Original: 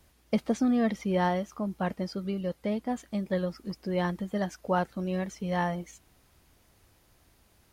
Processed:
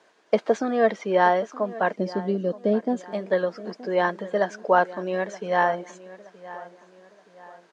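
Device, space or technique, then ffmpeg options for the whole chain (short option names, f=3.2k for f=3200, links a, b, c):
television speaker: -filter_complex "[0:a]highpass=f=230:w=0.5412,highpass=f=230:w=1.3066,equalizer=f=250:t=q:w=4:g=-6,equalizer=f=440:t=q:w=4:g=8,equalizer=f=650:t=q:w=4:g=8,equalizer=f=1k:t=q:w=4:g=7,equalizer=f=1.6k:t=q:w=4:g=9,equalizer=f=5.3k:t=q:w=4:g=-3,lowpass=f=6.9k:w=0.5412,lowpass=f=6.9k:w=1.3066,asettb=1/sr,asplit=3[a][b][c];[a]atrim=end=1.934[d];[b]atrim=start=1.93:end=3.01,asetpts=PTS-STARTPTS,afade=t=in:d=0.004:c=qsin,afade=t=out:st=1.076:d=0.004:c=qsin,equalizer=f=125:t=o:w=1:g=8,equalizer=f=250:t=o:w=1:g=9,equalizer=f=1k:t=o:w=1:g=-10,equalizer=f=2k:t=o:w=1:g=-11[e];[c]atrim=start=3.006[f];[d][e]acrossfade=d=0.004:c1=hsin:c2=qsin[g];[g][f]acrossfade=d=0.004:c1=qsin:c2=hsin,asplit=2[h][i];[i]adelay=923,lowpass=f=4.5k:p=1,volume=-17.5dB,asplit=2[j][k];[k]adelay=923,lowpass=f=4.5k:p=1,volume=0.41,asplit=2[l][m];[m]adelay=923,lowpass=f=4.5k:p=1,volume=0.41[n];[h][j][l][n]amix=inputs=4:normalize=0,volume=3.5dB"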